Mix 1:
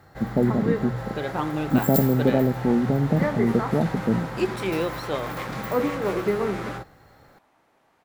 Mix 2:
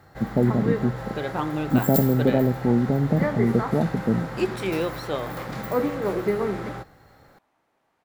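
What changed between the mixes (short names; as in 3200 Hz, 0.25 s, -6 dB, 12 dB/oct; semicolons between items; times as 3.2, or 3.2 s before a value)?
speech: remove notches 60/120 Hz; second sound -7.0 dB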